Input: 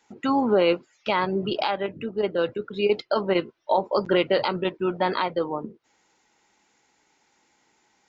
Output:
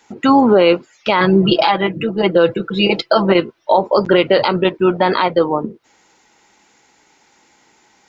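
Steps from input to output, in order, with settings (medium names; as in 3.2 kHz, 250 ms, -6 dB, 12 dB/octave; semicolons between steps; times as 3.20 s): 1.20–3.32 s: comb 6 ms, depth 96%; loudness maximiser +12.5 dB; trim -1 dB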